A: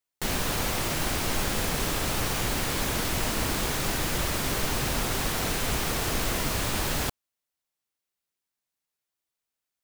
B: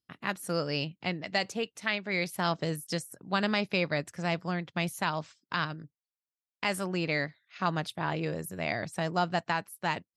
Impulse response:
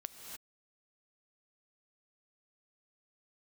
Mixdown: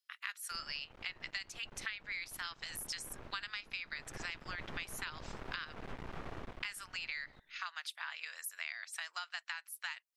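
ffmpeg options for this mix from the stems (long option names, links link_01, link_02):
-filter_complex "[0:a]lowpass=1700,alimiter=limit=-21.5dB:level=0:latency=1:release=66,aeval=exprs='max(val(0),0)':channel_layout=same,adelay=300,volume=-9.5dB,afade=type=in:start_time=3.86:duration=0.32:silence=0.398107,afade=type=out:start_time=6.39:duration=0.27:silence=0.251189,asplit=2[link_01][link_02];[link_02]volume=-17.5dB[link_03];[1:a]highpass=frequency=1400:width=0.5412,highpass=frequency=1400:width=1.3066,volume=3dB[link_04];[2:a]atrim=start_sample=2205[link_05];[link_03][link_05]afir=irnorm=-1:irlink=0[link_06];[link_01][link_04][link_06]amix=inputs=3:normalize=0,acompressor=threshold=-38dB:ratio=10"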